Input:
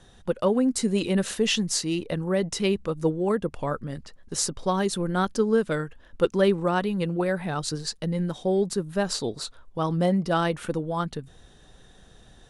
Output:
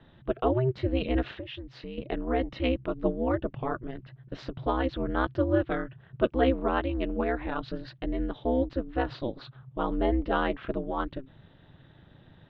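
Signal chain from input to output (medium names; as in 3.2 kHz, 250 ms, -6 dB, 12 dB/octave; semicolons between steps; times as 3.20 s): steep low-pass 3.4 kHz 36 dB/octave; 1.29–1.98 s: compression 6:1, threshold -35 dBFS, peak gain reduction 15.5 dB; ring modulator 130 Hz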